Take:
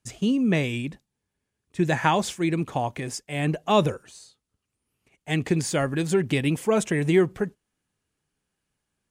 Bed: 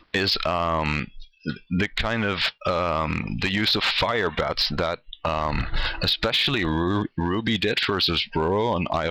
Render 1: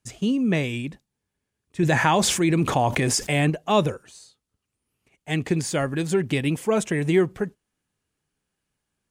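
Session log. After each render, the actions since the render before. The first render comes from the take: 1.83–3.50 s: level flattener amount 70%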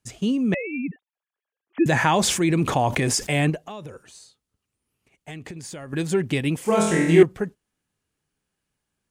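0.54–1.86 s: formants replaced by sine waves; 3.56–5.93 s: compression 12:1, threshold -33 dBFS; 6.63–7.23 s: flutter echo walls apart 4.1 m, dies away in 0.81 s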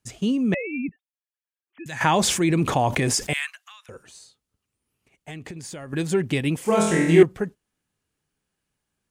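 0.89–2.01 s: amplifier tone stack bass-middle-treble 5-5-5; 3.33–3.89 s: steep high-pass 1.2 kHz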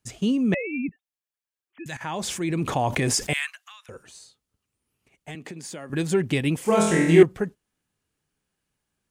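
1.97–3.22 s: fade in, from -15.5 dB; 5.35–5.90 s: high-pass 160 Hz 24 dB/octave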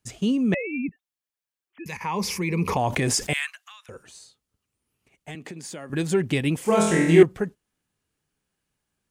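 1.84–2.77 s: rippled EQ curve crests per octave 0.84, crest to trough 14 dB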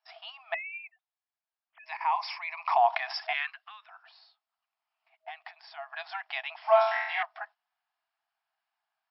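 FFT band-pass 640–5500 Hz; tilt shelf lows +8 dB, about 1.3 kHz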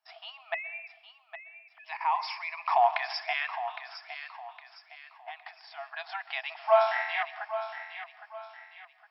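thinning echo 811 ms, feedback 41%, high-pass 590 Hz, level -10 dB; plate-style reverb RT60 0.9 s, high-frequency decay 0.75×, pre-delay 110 ms, DRR 16.5 dB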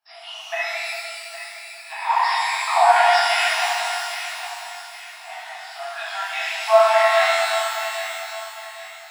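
pitch-shifted reverb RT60 2.2 s, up +12 st, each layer -8 dB, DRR -10 dB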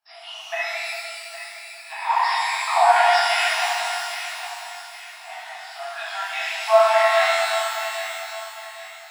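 trim -1 dB

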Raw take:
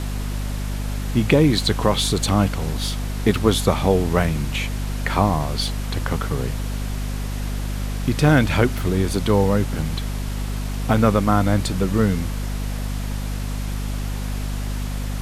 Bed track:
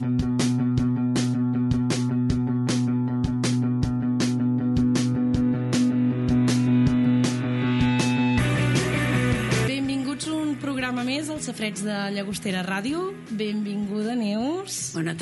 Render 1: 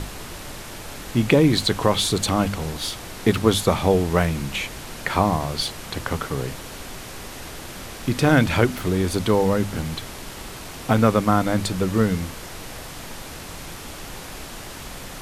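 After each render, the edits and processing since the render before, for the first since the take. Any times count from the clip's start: hum notches 50/100/150/200/250 Hz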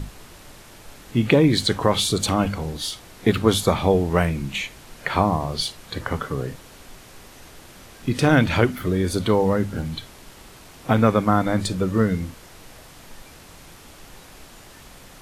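noise print and reduce 9 dB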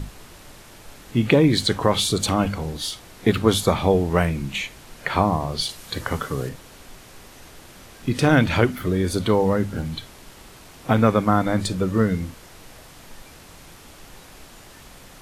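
5.69–6.49 s: treble shelf 4 kHz +7.5 dB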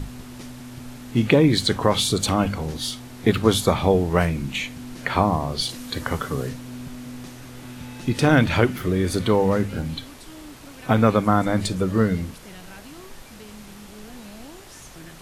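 add bed track -17 dB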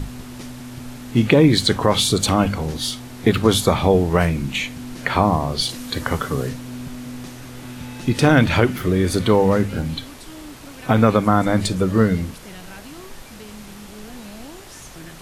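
trim +3.5 dB; peak limiter -2 dBFS, peak gain reduction 2.5 dB

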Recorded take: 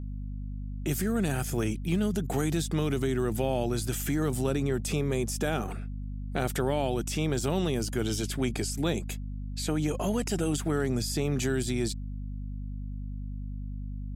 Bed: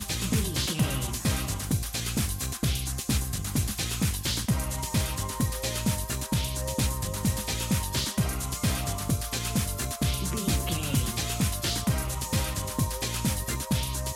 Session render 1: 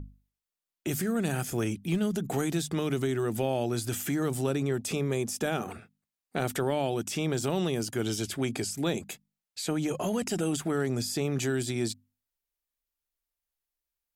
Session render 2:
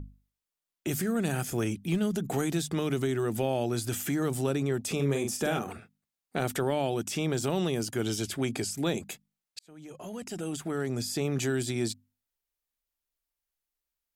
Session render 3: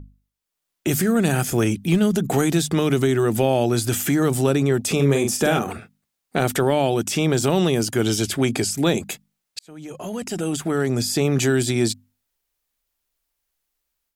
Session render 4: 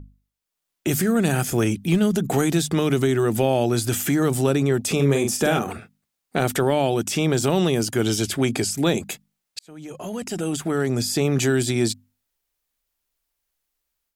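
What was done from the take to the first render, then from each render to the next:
hum notches 50/100/150/200/250 Hz
4.95–5.59 s: doubling 43 ms -5.5 dB; 9.59–11.28 s: fade in
level rider gain up to 10 dB
trim -1 dB

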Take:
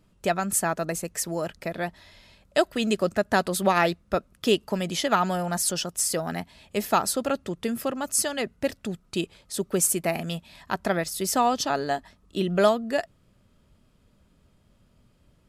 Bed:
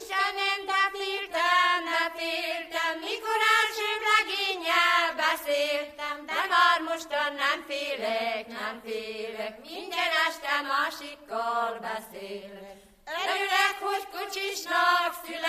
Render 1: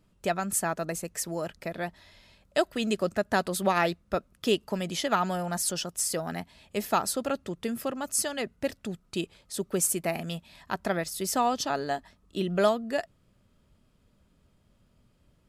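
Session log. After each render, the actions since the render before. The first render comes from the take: trim -3.5 dB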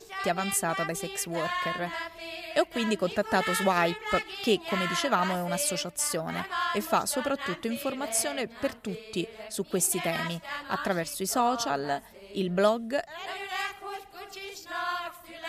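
add bed -9 dB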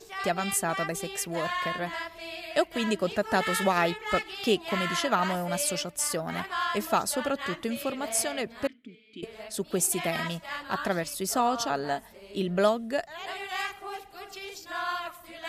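8.67–9.23 s: vowel filter i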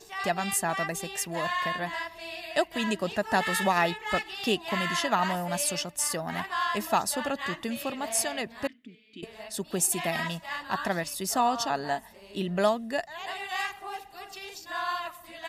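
bass shelf 130 Hz -5.5 dB; comb 1.1 ms, depth 35%

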